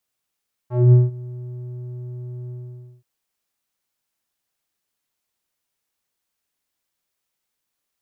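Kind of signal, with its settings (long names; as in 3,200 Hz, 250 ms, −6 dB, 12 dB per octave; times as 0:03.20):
subtractive voice square B2 12 dB per octave, low-pass 260 Hz, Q 1.7, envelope 2 octaves, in 0.16 s, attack 224 ms, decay 0.18 s, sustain −23 dB, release 0.53 s, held 1.80 s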